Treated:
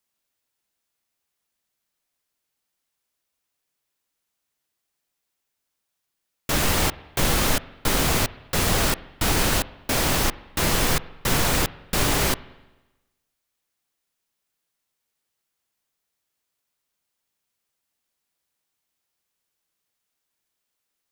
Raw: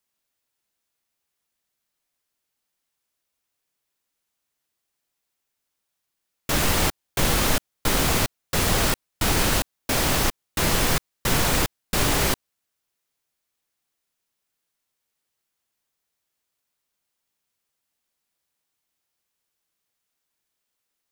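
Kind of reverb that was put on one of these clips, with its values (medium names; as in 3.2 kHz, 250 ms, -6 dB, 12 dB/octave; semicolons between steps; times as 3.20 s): spring tank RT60 1.1 s, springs 43/49 ms, chirp 65 ms, DRR 17.5 dB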